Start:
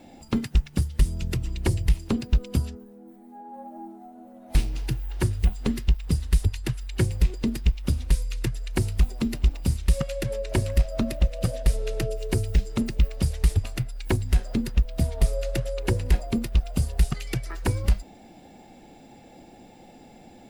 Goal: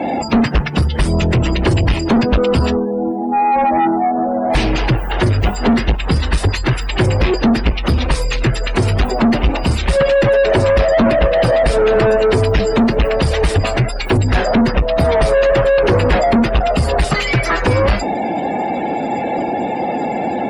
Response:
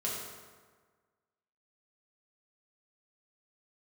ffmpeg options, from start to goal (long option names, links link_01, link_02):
-filter_complex "[0:a]asplit=2[link_01][link_02];[link_02]highpass=frequency=720:poles=1,volume=38dB,asoftclip=type=tanh:threshold=-11dB[link_03];[link_01][link_03]amix=inputs=2:normalize=0,lowpass=frequency=1700:poles=1,volume=-6dB,afftdn=noise_reduction=25:noise_floor=-34,volume=6.5dB"